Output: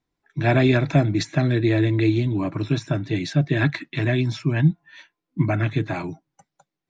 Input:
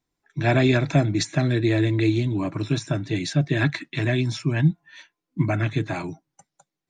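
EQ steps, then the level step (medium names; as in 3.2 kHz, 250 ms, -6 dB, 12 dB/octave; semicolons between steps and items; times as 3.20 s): distance through air 97 m; +1.5 dB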